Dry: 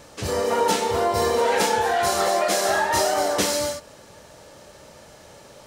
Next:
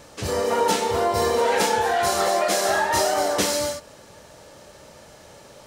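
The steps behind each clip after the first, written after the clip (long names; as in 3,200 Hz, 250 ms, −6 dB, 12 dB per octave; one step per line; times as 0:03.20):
no processing that can be heard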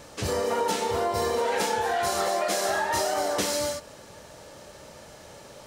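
downward compressor 2.5 to 1, threshold −25 dBFS, peak gain reduction 6.5 dB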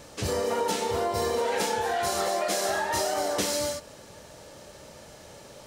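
parametric band 1,200 Hz −2.5 dB 1.8 octaves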